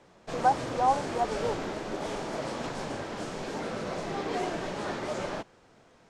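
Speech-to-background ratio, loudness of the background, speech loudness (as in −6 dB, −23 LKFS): 5.5 dB, −34.5 LKFS, −29.0 LKFS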